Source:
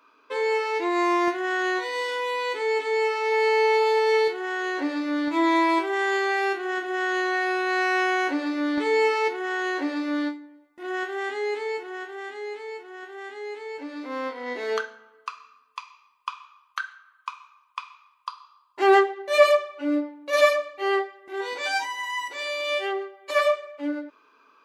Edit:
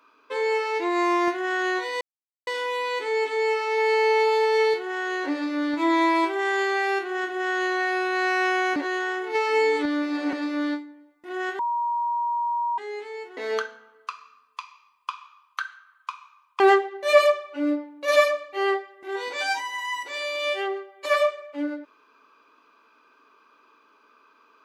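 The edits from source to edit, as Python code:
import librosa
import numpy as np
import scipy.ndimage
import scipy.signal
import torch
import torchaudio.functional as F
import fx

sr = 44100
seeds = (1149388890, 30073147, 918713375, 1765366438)

y = fx.edit(x, sr, fx.insert_silence(at_s=2.01, length_s=0.46),
    fx.reverse_span(start_s=8.3, length_s=1.57),
    fx.bleep(start_s=11.13, length_s=1.19, hz=949.0, db=-22.5),
    fx.cut(start_s=12.91, length_s=1.65),
    fx.cut(start_s=17.79, length_s=1.06), tone=tone)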